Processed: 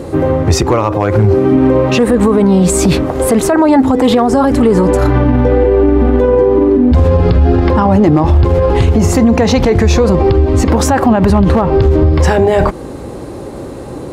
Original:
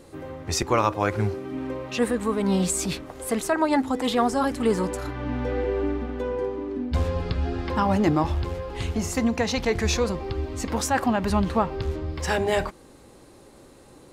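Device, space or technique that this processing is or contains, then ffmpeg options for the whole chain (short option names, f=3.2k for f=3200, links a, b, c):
mastering chain: -af "highpass=49,equalizer=f=220:t=o:w=1.1:g=-2.5,acompressor=threshold=-28dB:ratio=2,tiltshelf=f=1.2k:g=7,asoftclip=type=hard:threshold=-14dB,alimiter=level_in=21.5dB:limit=-1dB:release=50:level=0:latency=1,volume=-1dB"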